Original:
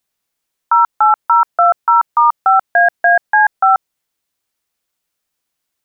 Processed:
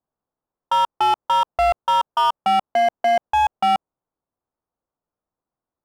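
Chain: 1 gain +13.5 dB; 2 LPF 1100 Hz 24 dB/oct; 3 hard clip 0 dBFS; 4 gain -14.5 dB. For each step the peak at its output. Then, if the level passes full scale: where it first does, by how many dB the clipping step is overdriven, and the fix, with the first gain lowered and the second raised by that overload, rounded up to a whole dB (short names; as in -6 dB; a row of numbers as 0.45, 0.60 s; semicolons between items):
+10.5, +7.5, 0.0, -14.5 dBFS; step 1, 7.5 dB; step 1 +5.5 dB, step 4 -6.5 dB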